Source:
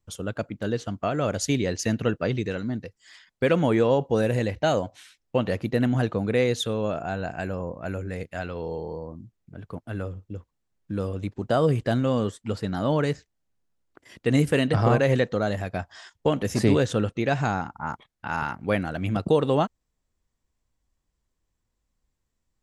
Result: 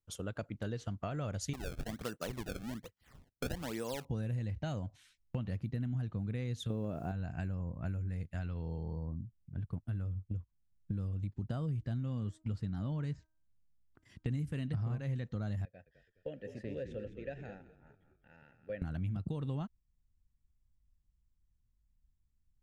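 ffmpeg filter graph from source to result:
ffmpeg -i in.wav -filter_complex "[0:a]asettb=1/sr,asplit=3[link_01][link_02][link_03];[link_01]atrim=end=1.534[link_04];[link_02]atrim=start=1.53:end=4.05,asetpts=PTS-STARTPTS,afade=type=in:duration=0.004:curve=qsin,afade=type=out:start_time=2.516:duration=0.004:curve=qsin,highpass=360,acrusher=samples=26:mix=1:aa=0.000001:lfo=1:lforange=41.6:lforate=1.2[link_05];[link_03]atrim=start=4.046[link_06];[link_04][link_05]acrossfade=duration=0.004:curve1=hsin:curve2=qsin[link_07];[link_07][link_06]acrossfade=duration=0.004:curve1=qsin:curve2=hsin,asettb=1/sr,asplit=3[link_08][link_09][link_10];[link_08]atrim=end=6.704[link_11];[link_09]atrim=start=6.7:end=7.12,asetpts=PTS-STARTPTS,afade=type=in:duration=0.004:curve=qsin,afade=type=out:start_time=0.416:duration=0.004:curve=qsin,equalizer=frequency=410:width=0.57:gain=13,acrusher=bits=7:mix=0:aa=0.5[link_12];[link_10]atrim=start=7.116[link_13];[link_11][link_12]acrossfade=duration=0.004:curve1=hsin:curve2=qsin[link_14];[link_14][link_13]acrossfade=duration=0.004:curve1=qsin:curve2=hsin,asettb=1/sr,asplit=3[link_15][link_16][link_17];[link_15]atrim=end=11.774[link_18];[link_16]atrim=start=11.77:end=14.3,asetpts=PTS-STARTPTS,afade=type=in:duration=0.004:curve=qsin,afade=type=out:start_time=2.526:duration=0.004:curve=qsin,lowpass=10000,bandreject=frequency=315.2:width_type=h:width=4,bandreject=frequency=630.4:width_type=h:width=4,bandreject=frequency=945.6:width_type=h:width=4,bandreject=frequency=1260.8:width_type=h:width=4,bandreject=frequency=1576:width_type=h:width=4[link_19];[link_17]atrim=start=14.296[link_20];[link_18][link_19]acrossfade=duration=0.004:curve1=hsin:curve2=qsin[link_21];[link_21][link_20]acrossfade=duration=0.004:curve1=qsin:curve2=hsin,asettb=1/sr,asplit=3[link_22][link_23][link_24];[link_22]atrim=end=15.654[link_25];[link_23]atrim=start=15.65:end=18.82,asetpts=PTS-STARTPTS,afade=type=in:duration=0.004:curve=qsin,afade=type=out:start_time=3.166:duration=0.004:curve=qsin,asplit=3[link_26][link_27][link_28];[link_26]bandpass=frequency=530:width_type=q:width=8,volume=0dB[link_29];[link_27]bandpass=frequency=1840:width_type=q:width=8,volume=-6dB[link_30];[link_28]bandpass=frequency=2480:width_type=q:width=8,volume=-9dB[link_31];[link_29][link_30][link_31]amix=inputs=3:normalize=0,equalizer=frequency=2500:width=1.1:gain=-3.5,asplit=6[link_32][link_33][link_34][link_35][link_36][link_37];[link_33]adelay=208,afreqshift=-44,volume=-10.5dB[link_38];[link_34]adelay=416,afreqshift=-88,volume=-17.6dB[link_39];[link_35]adelay=624,afreqshift=-132,volume=-24.8dB[link_40];[link_36]adelay=832,afreqshift=-176,volume=-31.9dB[link_41];[link_37]adelay=1040,afreqshift=-220,volume=-39dB[link_42];[link_32][link_38][link_39][link_40][link_41][link_42]amix=inputs=6:normalize=0,atrim=end_sample=139797[link_43];[link_24]atrim=start=18.816[link_44];[link_25][link_43]acrossfade=duration=0.004:curve1=hsin:curve2=qsin[link_45];[link_45][link_44]acrossfade=duration=0.004:curve1=qsin:curve2=hsin,agate=range=-7dB:threshold=-41dB:ratio=16:detection=peak,asubboost=boost=8.5:cutoff=160,acompressor=threshold=-28dB:ratio=6,volume=-7dB" out.wav

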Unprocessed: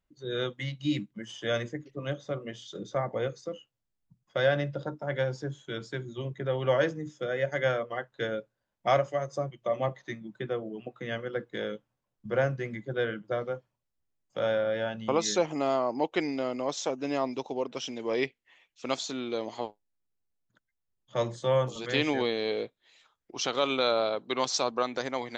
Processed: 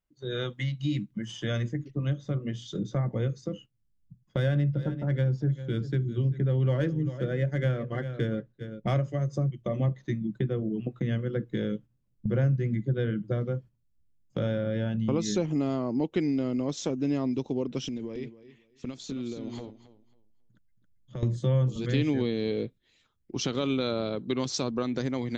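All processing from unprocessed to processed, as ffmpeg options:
ffmpeg -i in.wav -filter_complex "[0:a]asettb=1/sr,asplit=3[link_01][link_02][link_03];[link_01]atrim=end=4.374[link_04];[link_02]atrim=start=4.37:end=8.94,asetpts=PTS-STARTPTS,afade=type=in:duration=0.004:curve=qsin,afade=type=out:start_time=4.566:duration=0.004:curve=qsin,adynamicsmooth=sensitivity=6.5:basefreq=5400,aecho=1:1:396:0.158,atrim=end_sample=201537[link_05];[link_03]atrim=start=8.936[link_06];[link_04][link_05]acrossfade=duration=0.004:curve1=hsin:curve2=qsin[link_07];[link_07][link_06]acrossfade=duration=0.004:curve1=qsin:curve2=hsin,asettb=1/sr,asplit=3[link_08][link_09][link_10];[link_08]atrim=end=17.884[link_11];[link_09]atrim=start=17.88:end=21.23,asetpts=PTS-STARTPTS,afade=type=in:duration=0.004:curve=qsin,afade=type=out:start_time=3.346:duration=0.004:curve=qsin,acompressor=threshold=-42dB:ratio=10:attack=3.2:release=140:knee=1:detection=peak,aecho=1:1:273|546|819:0.398|0.0836|0.0176,atrim=end_sample=147735[link_12];[link_10]atrim=start=21.226[link_13];[link_11][link_12]acrossfade=duration=0.004:curve1=hsin:curve2=qsin[link_14];[link_14][link_13]acrossfade=duration=0.004:curve1=qsin:curve2=hsin,agate=range=-8dB:threshold=-49dB:ratio=16:detection=peak,asubboost=boost=10.5:cutoff=230,acompressor=threshold=-33dB:ratio=2,volume=2.5dB" out.wav

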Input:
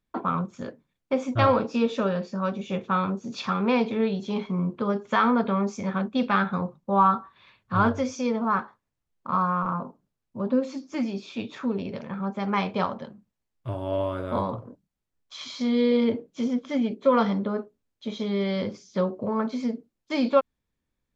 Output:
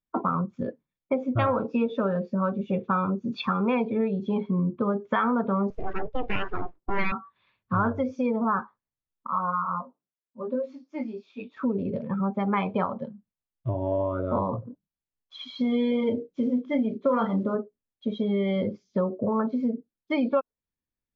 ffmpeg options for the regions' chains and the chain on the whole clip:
ffmpeg -i in.wav -filter_complex "[0:a]asettb=1/sr,asplit=3[link_01][link_02][link_03];[link_01]atrim=end=5.704[link_04];[link_02]atrim=start=5.7:end=7.12,asetpts=PTS-STARTPTS,afade=type=in:duration=0.004:curve=qsin,afade=type=out:start_time=1.416:duration=0.004:curve=qsin,bass=frequency=250:gain=0,treble=frequency=4000:gain=-15,aeval=exprs='abs(val(0))':channel_layout=same[link_05];[link_03]atrim=start=7.116[link_06];[link_04][link_05]acrossfade=duration=0.004:curve1=hsin:curve2=qsin[link_07];[link_07][link_06]acrossfade=duration=0.004:curve1=qsin:curve2=hsin,asettb=1/sr,asplit=3[link_08][link_09][link_10];[link_08]atrim=end=9.274[link_11];[link_09]atrim=start=9.27:end=11.57,asetpts=PTS-STARTPTS,afade=type=in:duration=0.004:curve=qsin,afade=type=out:start_time=2.296:duration=0.004:curve=qsin,highpass=frequency=530:poles=1,flanger=delay=20:depth=3.4:speed=1.4[link_12];[link_10]atrim=start=11.566[link_13];[link_11][link_12]acrossfade=duration=0.004:curve1=hsin:curve2=qsin[link_14];[link_14][link_13]acrossfade=duration=0.004:curve1=qsin:curve2=hsin,asettb=1/sr,asplit=3[link_15][link_16][link_17];[link_15]atrim=end=15.504[link_18];[link_16]atrim=start=15.5:end=17.55,asetpts=PTS-STARTPTS,afade=type=in:duration=0.004:curve=qsin,afade=type=out:start_time=2.046:duration=0.004:curve=qsin,acrusher=bits=6:mode=log:mix=0:aa=0.000001,asplit=2[link_19][link_20];[link_20]adelay=32,volume=-6dB[link_21];[link_19][link_21]amix=inputs=2:normalize=0,atrim=end_sample=90405[link_22];[link_17]atrim=start=17.546[link_23];[link_18][link_22]acrossfade=duration=0.004:curve1=hsin:curve2=qsin[link_24];[link_24][link_23]acrossfade=duration=0.004:curve1=qsin:curve2=hsin,lowpass=4100,afftdn=noise_reduction=18:noise_floor=-33,acompressor=threshold=-30dB:ratio=3,volume=6dB" out.wav

